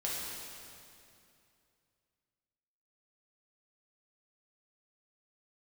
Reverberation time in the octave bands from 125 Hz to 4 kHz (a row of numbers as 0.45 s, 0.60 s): 3.0 s, 2.8 s, 2.7 s, 2.5 s, 2.4 s, 2.3 s